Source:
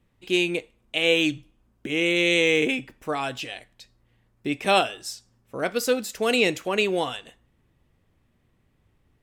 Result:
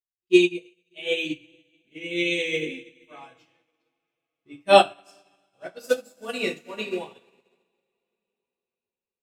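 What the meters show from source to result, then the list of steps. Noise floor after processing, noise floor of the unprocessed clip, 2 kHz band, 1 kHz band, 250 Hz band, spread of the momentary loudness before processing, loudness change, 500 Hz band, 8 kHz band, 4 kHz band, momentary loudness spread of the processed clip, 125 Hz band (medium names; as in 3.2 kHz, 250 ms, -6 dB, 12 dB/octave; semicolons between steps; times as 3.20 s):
under -85 dBFS, -67 dBFS, -4.5 dB, +2.5 dB, -1.0 dB, 16 LU, 0.0 dB, +0.5 dB, -7.5 dB, -4.0 dB, 22 LU, -6.0 dB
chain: expander on every frequency bin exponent 1.5; two-slope reverb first 0.38 s, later 4.6 s, from -17 dB, DRR -5 dB; upward expansion 2.5:1, over -38 dBFS; trim +1.5 dB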